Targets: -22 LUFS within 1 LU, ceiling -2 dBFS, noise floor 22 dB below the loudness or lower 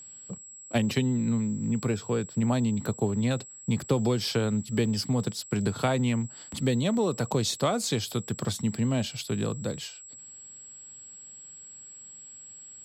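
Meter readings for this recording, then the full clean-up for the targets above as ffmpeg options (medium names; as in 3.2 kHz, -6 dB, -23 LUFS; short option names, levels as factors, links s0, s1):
steady tone 7.7 kHz; tone level -44 dBFS; loudness -28.5 LUFS; peak level -11.0 dBFS; loudness target -22.0 LUFS
-> -af "bandreject=f=7700:w=30"
-af "volume=2.11"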